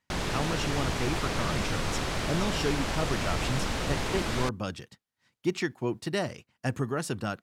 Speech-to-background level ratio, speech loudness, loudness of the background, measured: −2.0 dB, −33.5 LKFS, −31.5 LKFS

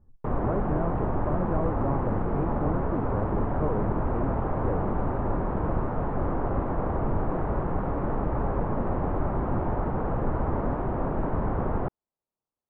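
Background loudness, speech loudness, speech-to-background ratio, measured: −29.5 LKFS, −34.0 LKFS, −4.5 dB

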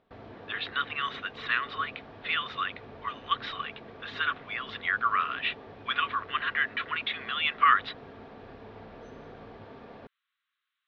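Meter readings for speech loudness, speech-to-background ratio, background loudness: −30.0 LKFS, 17.5 dB, −47.5 LKFS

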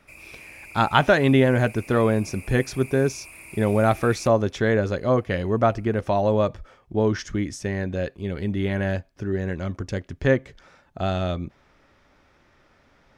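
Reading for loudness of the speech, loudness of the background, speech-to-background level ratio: −23.5 LKFS, −42.0 LKFS, 18.5 dB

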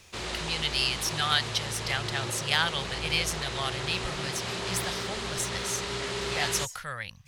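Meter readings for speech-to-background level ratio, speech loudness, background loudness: 3.0 dB, −30.5 LKFS, −33.5 LKFS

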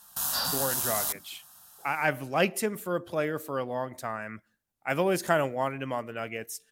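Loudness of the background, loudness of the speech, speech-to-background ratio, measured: −28.0 LKFS, −31.0 LKFS, −3.0 dB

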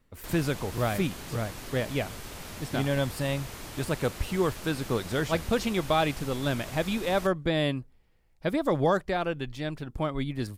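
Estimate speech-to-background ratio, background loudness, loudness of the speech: 11.5 dB, −41.0 LKFS, −29.5 LKFS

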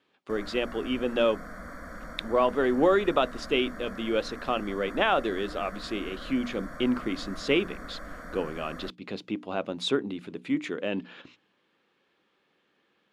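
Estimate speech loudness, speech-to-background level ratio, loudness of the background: −29.0 LKFS, 14.0 dB, −43.0 LKFS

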